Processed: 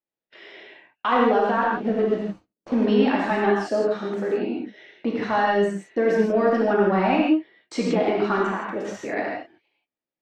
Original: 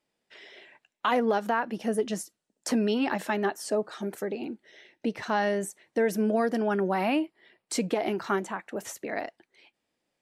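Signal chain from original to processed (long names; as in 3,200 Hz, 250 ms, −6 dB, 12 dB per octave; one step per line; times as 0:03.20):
0:01.62–0:02.87: running median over 25 samples
noise gate −54 dBFS, range −20 dB
in parallel at −7.5 dB: hard clipping −23.5 dBFS, distortion −12 dB
on the sum: high-frequency loss of the air 170 metres
reverb whose tail is shaped and stops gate 190 ms flat, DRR −3.5 dB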